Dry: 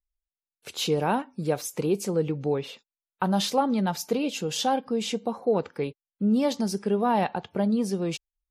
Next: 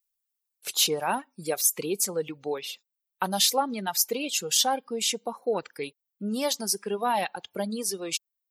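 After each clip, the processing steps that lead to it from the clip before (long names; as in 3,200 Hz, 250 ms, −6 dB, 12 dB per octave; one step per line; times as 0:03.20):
RIAA equalisation recording
reverb reduction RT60 1.7 s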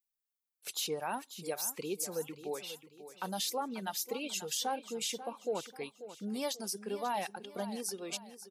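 brickwall limiter −17 dBFS, peak gain reduction 9 dB
repeating echo 539 ms, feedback 39%, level −13 dB
level −8 dB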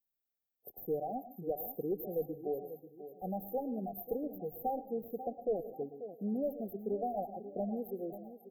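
asymmetric clip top −31.5 dBFS
linear-phase brick-wall band-stop 810–13,000 Hz
convolution reverb RT60 0.35 s, pre-delay 97 ms, DRR 13 dB
level +3 dB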